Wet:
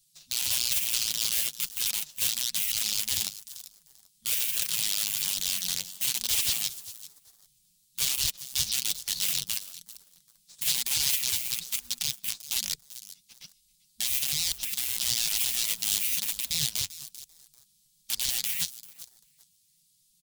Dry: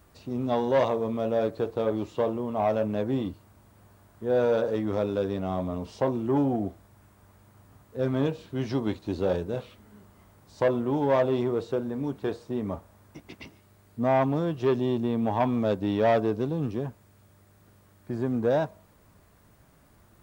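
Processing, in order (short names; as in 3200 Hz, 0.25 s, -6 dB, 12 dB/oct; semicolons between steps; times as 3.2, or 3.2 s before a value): downsampling 32000 Hz; in parallel at +3 dB: limiter -22.5 dBFS, peak gain reduction 9 dB; on the sum: wrapped overs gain 16.5 dB; inverse Chebyshev band-stop 340–1200 Hz, stop band 70 dB; spectral gate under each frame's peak -15 dB weak; on a send: feedback echo 0.392 s, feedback 28%, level -16.5 dB; on the sum: sample leveller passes 2; flange 1.1 Hz, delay 1.9 ms, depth 9.5 ms, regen +33%; gain +4.5 dB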